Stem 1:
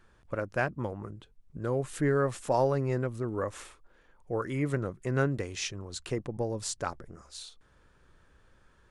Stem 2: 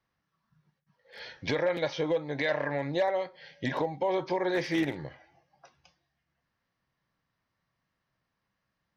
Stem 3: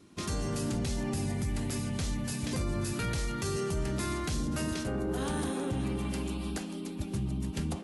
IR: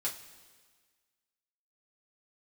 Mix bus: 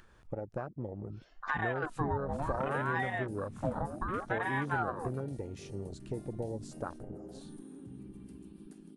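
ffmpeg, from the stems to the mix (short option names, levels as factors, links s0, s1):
-filter_complex "[0:a]acompressor=threshold=0.02:ratio=6,volume=1.06[s0];[1:a]equalizer=f=125:t=o:w=1:g=7,equalizer=f=250:t=o:w=1:g=5,equalizer=f=500:t=o:w=1:g=6,equalizer=f=2000:t=o:w=1:g=-6,acrossover=split=180[s1][s2];[s2]acompressor=threshold=0.0447:ratio=6[s3];[s1][s3]amix=inputs=2:normalize=0,aeval=exprs='val(0)*sin(2*PI*840*n/s+840*0.6/0.66*sin(2*PI*0.66*n/s))':c=same,volume=0.708[s4];[2:a]highpass=120,equalizer=f=9300:t=o:w=0.32:g=12.5,adelay=2150,volume=0.224[s5];[s0][s4][s5]amix=inputs=3:normalize=0,afwtdn=0.0141,acompressor=mode=upward:threshold=0.00562:ratio=2.5"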